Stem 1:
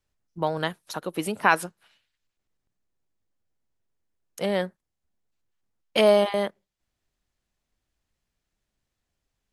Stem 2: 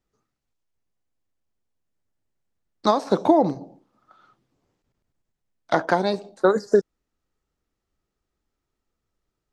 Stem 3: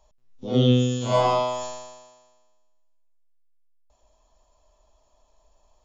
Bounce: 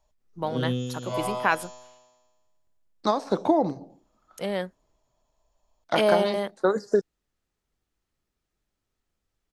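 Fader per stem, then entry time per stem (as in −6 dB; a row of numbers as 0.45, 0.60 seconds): −3.5, −4.5, −9.5 decibels; 0.00, 0.20, 0.00 seconds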